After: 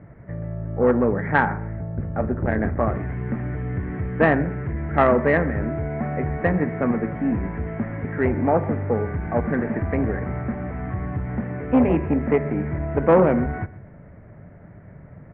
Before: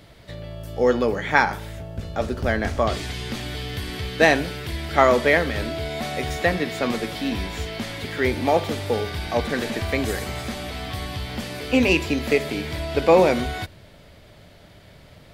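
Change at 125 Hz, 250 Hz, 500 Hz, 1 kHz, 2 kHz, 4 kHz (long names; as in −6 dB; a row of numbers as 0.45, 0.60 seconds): +5.0 dB, +3.5 dB, −0.5 dB, −1.0 dB, −4.0 dB, below −20 dB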